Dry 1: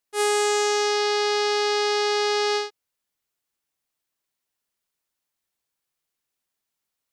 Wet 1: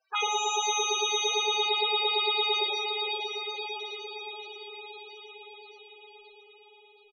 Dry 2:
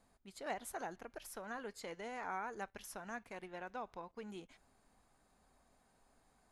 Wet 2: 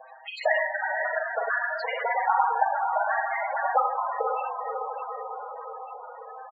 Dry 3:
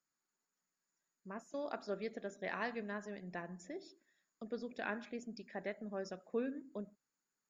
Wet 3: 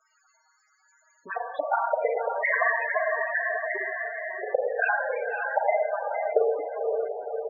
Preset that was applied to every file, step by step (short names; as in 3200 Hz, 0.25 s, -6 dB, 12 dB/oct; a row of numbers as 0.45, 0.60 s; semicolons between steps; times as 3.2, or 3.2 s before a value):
comb 6.4 ms, depth 53%; limiter -17 dBFS; transient shaper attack +6 dB, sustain -8 dB; speakerphone echo 0.1 s, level -11 dB; LFO high-pass saw up 8.8 Hz 550–4400 Hz; envelope flanger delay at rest 7.8 ms, full sweep at -28 dBFS; air absorption 50 m; on a send: diffused feedback echo 0.522 s, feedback 54%, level -6.5 dB; on the sum: Schroeder reverb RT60 0.87 s, combs from 33 ms, DRR -0.5 dB; loudest bins only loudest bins 16; three-band squash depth 40%; match loudness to -27 LUFS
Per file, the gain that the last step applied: +2.5, +17.5, +16.0 dB